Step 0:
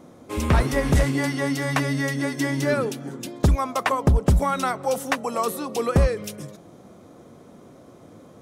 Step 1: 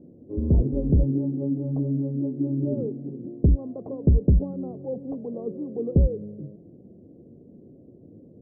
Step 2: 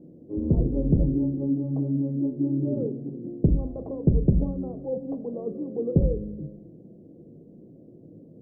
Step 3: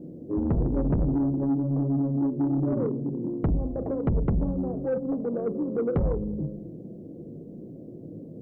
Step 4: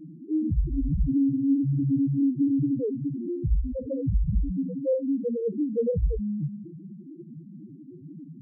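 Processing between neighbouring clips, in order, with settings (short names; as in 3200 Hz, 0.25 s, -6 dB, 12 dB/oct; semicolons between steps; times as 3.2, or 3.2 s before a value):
inverse Chebyshev low-pass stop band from 1500 Hz, stop band 60 dB
bell 70 Hz -9 dB 0.52 oct; reverb RT60 0.55 s, pre-delay 6 ms, DRR 10 dB
in parallel at +2 dB: compressor, threshold -33 dBFS, peak gain reduction 18 dB; on the sum: soft clip -19 dBFS, distortion -10 dB
loudest bins only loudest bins 2; gain +4 dB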